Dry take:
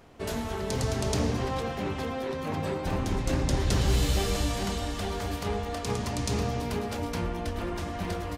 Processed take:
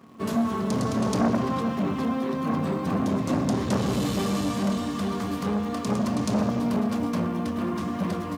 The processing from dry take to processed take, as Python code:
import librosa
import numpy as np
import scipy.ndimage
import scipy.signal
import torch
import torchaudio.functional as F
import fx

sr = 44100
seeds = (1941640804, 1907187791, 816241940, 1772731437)

p1 = scipy.signal.sosfilt(scipy.signal.butter(4, 95.0, 'highpass', fs=sr, output='sos'), x)
p2 = fx.quant_dither(p1, sr, seeds[0], bits=8, dither='none')
p3 = p1 + (p2 * 10.0 ** (-7.0 / 20.0))
p4 = fx.small_body(p3, sr, hz=(220.0, 1100.0), ring_ms=40, db=16)
p5 = fx.transformer_sat(p4, sr, knee_hz=710.0)
y = p5 * 10.0 ** (-4.0 / 20.0)